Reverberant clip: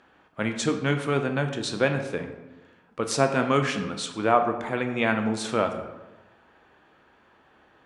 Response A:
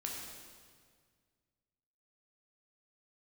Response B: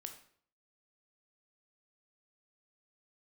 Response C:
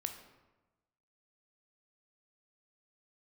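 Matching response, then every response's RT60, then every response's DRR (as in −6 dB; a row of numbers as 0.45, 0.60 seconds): C; 1.8, 0.55, 1.1 seconds; −2.0, 5.0, 5.5 decibels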